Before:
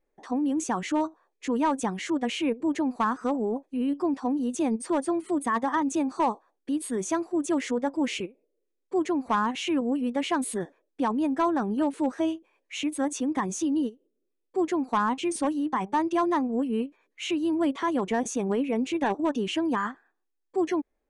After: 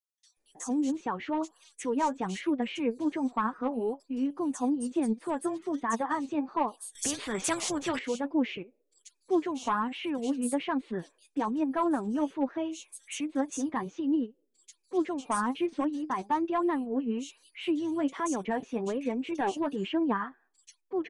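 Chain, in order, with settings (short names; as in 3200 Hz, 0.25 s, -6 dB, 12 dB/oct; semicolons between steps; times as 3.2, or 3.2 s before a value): bands offset in time highs, lows 0.37 s, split 3800 Hz; flange 1.2 Hz, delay 2.7 ms, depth 6.3 ms, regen +40%; 6.95–7.99 spectral compressor 2:1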